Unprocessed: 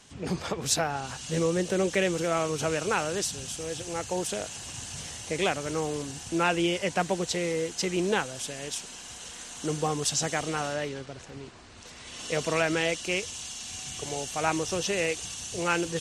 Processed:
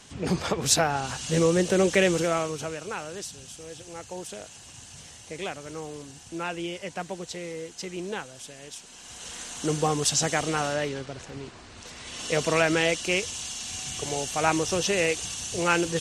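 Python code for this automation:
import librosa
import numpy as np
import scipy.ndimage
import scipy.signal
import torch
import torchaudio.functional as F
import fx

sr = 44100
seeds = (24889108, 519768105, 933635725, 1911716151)

y = fx.gain(x, sr, db=fx.line((2.17, 4.5), (2.77, -7.0), (8.81, -7.0), (9.33, 3.5)))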